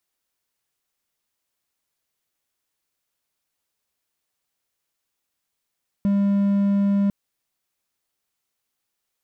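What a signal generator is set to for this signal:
tone triangle 200 Hz −14.5 dBFS 1.05 s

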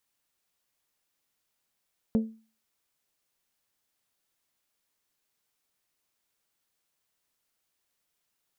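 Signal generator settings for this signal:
struck glass bell, lowest mode 222 Hz, decay 0.37 s, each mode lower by 9 dB, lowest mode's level −18 dB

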